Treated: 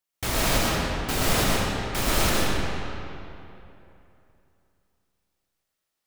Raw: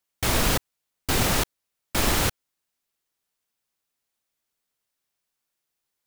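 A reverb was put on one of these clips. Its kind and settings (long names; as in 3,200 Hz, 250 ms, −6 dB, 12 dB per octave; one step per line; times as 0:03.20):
comb and all-pass reverb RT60 2.9 s, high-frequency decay 0.7×, pre-delay 65 ms, DRR −5.5 dB
level −4.5 dB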